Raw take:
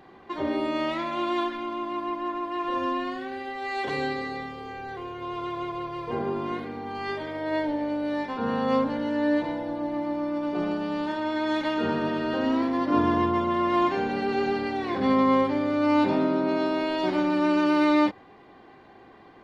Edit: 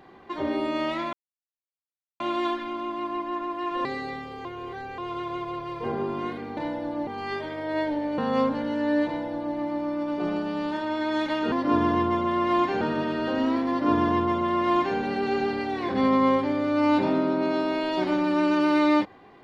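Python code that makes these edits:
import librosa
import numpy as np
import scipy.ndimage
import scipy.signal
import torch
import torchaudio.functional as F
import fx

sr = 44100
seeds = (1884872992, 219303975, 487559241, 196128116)

y = fx.edit(x, sr, fx.insert_silence(at_s=1.13, length_s=1.07),
    fx.cut(start_s=2.78, length_s=1.34),
    fx.reverse_span(start_s=4.72, length_s=0.53),
    fx.cut(start_s=7.95, length_s=0.58),
    fx.duplicate(start_s=9.41, length_s=0.5, to_s=6.84),
    fx.duplicate(start_s=12.75, length_s=1.29, to_s=11.87), tone=tone)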